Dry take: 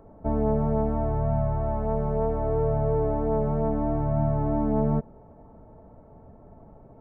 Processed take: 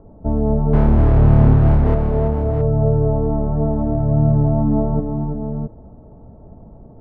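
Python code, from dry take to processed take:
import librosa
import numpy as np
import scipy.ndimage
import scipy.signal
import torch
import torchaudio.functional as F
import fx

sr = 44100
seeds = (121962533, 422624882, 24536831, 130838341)

y = fx.halfwave_hold(x, sr, at=(0.73, 1.95))
y = scipy.signal.sosfilt(scipy.signal.butter(2, 1200.0, 'lowpass', fs=sr, output='sos'), y)
y = fx.low_shelf(y, sr, hz=390.0, db=9.0)
y = fx.echo_multitap(y, sr, ms=(245, 334, 668), db=(-11.0, -7.0, -7.5))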